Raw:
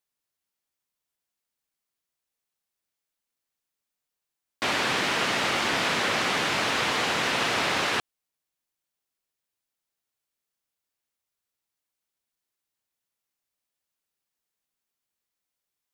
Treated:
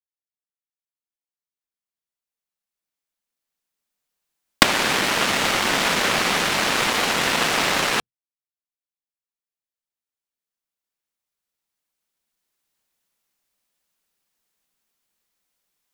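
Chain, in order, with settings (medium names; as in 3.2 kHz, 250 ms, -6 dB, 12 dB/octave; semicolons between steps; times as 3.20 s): recorder AGC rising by 6.3 dB/s; on a send at -9.5 dB: amplifier tone stack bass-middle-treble 10-0-1 + reverberation, pre-delay 3 ms; on the sum: waveshaping leveller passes 5; trim -11.5 dB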